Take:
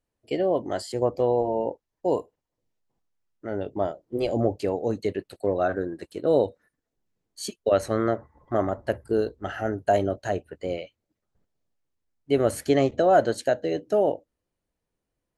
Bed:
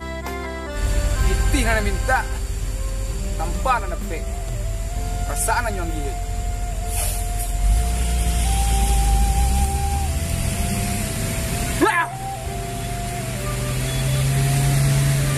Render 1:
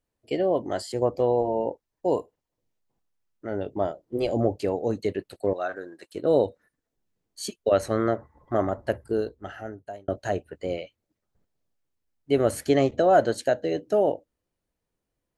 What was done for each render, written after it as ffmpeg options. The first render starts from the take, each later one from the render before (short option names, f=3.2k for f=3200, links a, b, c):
-filter_complex "[0:a]asettb=1/sr,asplit=3[a][b][c];[a]atrim=end=5.534[d];[b]atrim=start=5.53:end=6.15,asetpts=PTS-STARTPTS,afade=t=in:d=0.004:c=qsin,afade=t=out:st=0.616:d=0.004:c=qsin,highpass=f=1.1k:p=1[e];[c]atrim=start=6.146[f];[d][e]acrossfade=d=0.004:c1=hsin:c2=qsin[g];[g][f]acrossfade=d=0.004:c1=qsin:c2=hsin,asplit=2[h][i];[h]atrim=end=10.08,asetpts=PTS-STARTPTS,afade=t=out:st=8.9:d=1.18[j];[i]atrim=start=10.08,asetpts=PTS-STARTPTS,afade=t=in:d=0.004:c=hsin[k];[j][k]concat=n=2:v=0:a=1"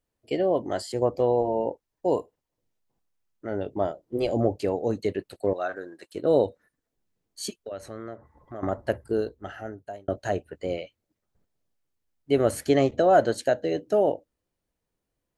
-filter_complex "[0:a]asettb=1/sr,asplit=3[a][b][c];[a]atrim=end=7.544[d];[b]atrim=start=7.54:end=8.63,asetpts=PTS-STARTPTS,afade=t=in:d=0.004:c=qsin,afade=t=out:st=1.086:d=0.004:c=qsin,acompressor=threshold=-45dB:ratio=2:attack=3.2:release=140:knee=1:detection=peak[e];[c]atrim=start=8.626[f];[d][e]acrossfade=d=0.004:c1=hsin:c2=qsin[g];[g][f]acrossfade=d=0.004:c1=qsin:c2=hsin"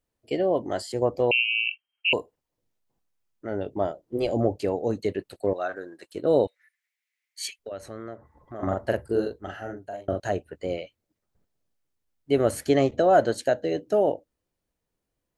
-filter_complex "[0:a]asettb=1/sr,asplit=3[a][b][c];[a]atrim=end=1.314[d];[b]atrim=start=1.31:end=2.13,asetpts=PTS-STARTPTS,afade=t=in:d=0.004:c=qsin,afade=t=out:st=0.816:d=0.004:c=qsin,lowpass=f=2.7k:t=q:w=0.5098,lowpass=f=2.7k:t=q:w=0.6013,lowpass=f=2.7k:t=q:w=0.9,lowpass=f=2.7k:t=q:w=2.563,afreqshift=-3200[e];[c]atrim=start=2.126[f];[d][e]acrossfade=d=0.004:c1=hsin:c2=qsin[g];[g][f]acrossfade=d=0.004:c1=qsin:c2=hsin,asettb=1/sr,asplit=3[h][i][j];[h]atrim=end=6.474[k];[i]atrim=start=6.47:end=7.59,asetpts=PTS-STARTPTS,afade=t=in:d=0.004:c=qsin,afade=t=out:st=1.116:d=0.004:c=qsin,highpass=f=2.1k:t=q:w=6.8[l];[j]atrim=start=7.586[m];[k][l]acrossfade=d=0.004:c1=hsin:c2=qsin[n];[n][m]acrossfade=d=0.004:c1=qsin:c2=hsin,asettb=1/sr,asplit=3[o][p][q];[o]atrim=end=8.554[r];[p]atrim=start=8.55:end=10.2,asetpts=PTS-STARTPTS,afade=t=in:d=0.004:c=qsin,afade=t=out:st=1.646:d=0.004:c=qsin,asplit=2[s][t];[t]adelay=43,volume=-2.5dB[u];[s][u]amix=inputs=2:normalize=0,atrim=end_sample=72765[v];[q]atrim=start=10.196[w];[r][v]acrossfade=d=0.004:c1=hsin:c2=qsin[x];[x][w]acrossfade=d=0.004:c1=qsin:c2=hsin"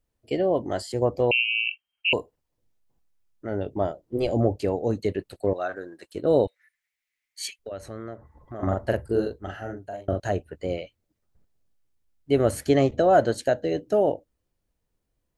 -af "lowshelf=f=110:g=9.5"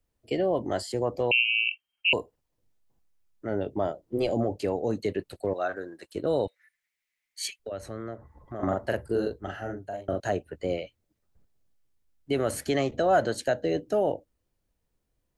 -filter_complex "[0:a]acrossover=split=140|860[a][b][c];[a]acompressor=threshold=-42dB:ratio=6[d];[b]alimiter=limit=-19dB:level=0:latency=1[e];[d][e][c]amix=inputs=3:normalize=0"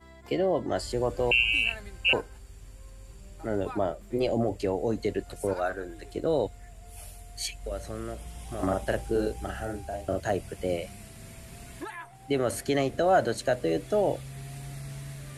-filter_complex "[1:a]volume=-22dB[a];[0:a][a]amix=inputs=2:normalize=0"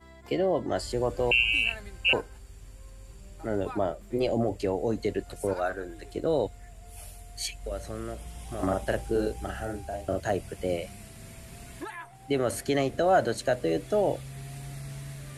-af anull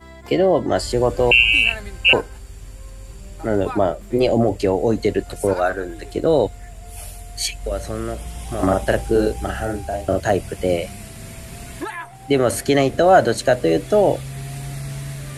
-af "volume=10dB"